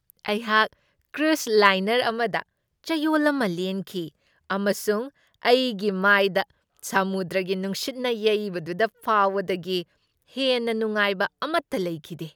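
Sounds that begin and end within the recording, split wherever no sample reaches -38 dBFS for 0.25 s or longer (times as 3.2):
1.14–2.42
2.84–4.08
4.5–5.08
5.43–6.43
6.79–9.83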